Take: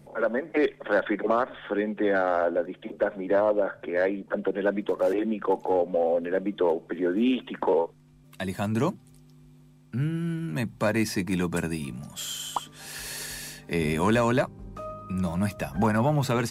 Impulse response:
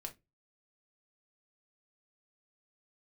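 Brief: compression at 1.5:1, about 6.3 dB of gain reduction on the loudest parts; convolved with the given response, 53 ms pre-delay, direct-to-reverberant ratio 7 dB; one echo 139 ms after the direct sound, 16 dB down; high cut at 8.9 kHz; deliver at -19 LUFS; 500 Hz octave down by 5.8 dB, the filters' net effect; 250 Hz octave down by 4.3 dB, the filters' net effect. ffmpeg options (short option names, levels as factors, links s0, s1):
-filter_complex "[0:a]lowpass=8900,equalizer=f=250:t=o:g=-4,equalizer=f=500:t=o:g=-6,acompressor=threshold=0.01:ratio=1.5,aecho=1:1:139:0.158,asplit=2[s0][s1];[1:a]atrim=start_sample=2205,adelay=53[s2];[s1][s2]afir=irnorm=-1:irlink=0,volume=0.668[s3];[s0][s3]amix=inputs=2:normalize=0,volume=6.31"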